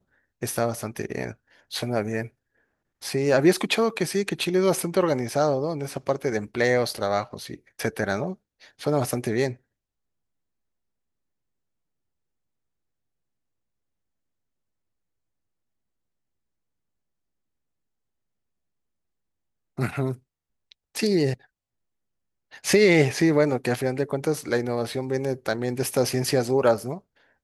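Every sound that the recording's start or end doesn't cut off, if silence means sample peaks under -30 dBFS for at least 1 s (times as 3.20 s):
19.78–21.34 s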